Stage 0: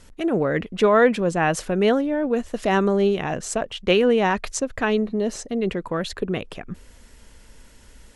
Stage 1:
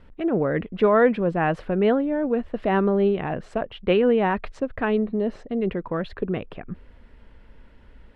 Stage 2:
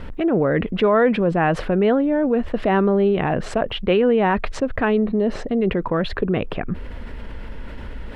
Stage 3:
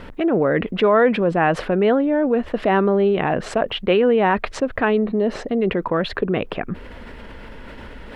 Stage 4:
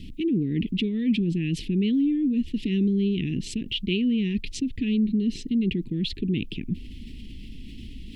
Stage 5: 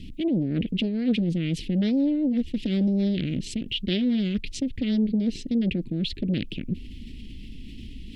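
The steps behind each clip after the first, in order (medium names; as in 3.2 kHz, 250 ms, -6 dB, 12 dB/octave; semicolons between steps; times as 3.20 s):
distance through air 440 m
level flattener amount 50%
bass shelf 140 Hz -10.5 dB; trim +2 dB
inverse Chebyshev band-stop 560–1500 Hz, stop band 50 dB
loudspeaker Doppler distortion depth 0.39 ms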